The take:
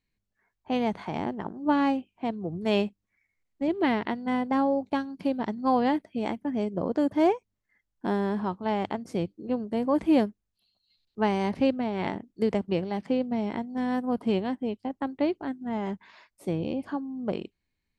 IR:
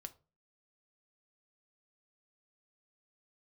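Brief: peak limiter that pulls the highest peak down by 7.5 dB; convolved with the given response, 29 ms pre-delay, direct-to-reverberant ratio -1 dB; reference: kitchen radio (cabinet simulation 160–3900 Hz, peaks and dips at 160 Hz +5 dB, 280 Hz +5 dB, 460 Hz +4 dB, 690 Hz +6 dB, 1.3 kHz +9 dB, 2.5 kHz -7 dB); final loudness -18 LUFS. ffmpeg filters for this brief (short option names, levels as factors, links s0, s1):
-filter_complex "[0:a]alimiter=limit=0.1:level=0:latency=1,asplit=2[s0][s1];[1:a]atrim=start_sample=2205,adelay=29[s2];[s1][s2]afir=irnorm=-1:irlink=0,volume=2.11[s3];[s0][s3]amix=inputs=2:normalize=0,highpass=160,equalizer=f=160:t=q:w=4:g=5,equalizer=f=280:t=q:w=4:g=5,equalizer=f=460:t=q:w=4:g=4,equalizer=f=690:t=q:w=4:g=6,equalizer=f=1300:t=q:w=4:g=9,equalizer=f=2500:t=q:w=4:g=-7,lowpass=f=3900:w=0.5412,lowpass=f=3900:w=1.3066,volume=2"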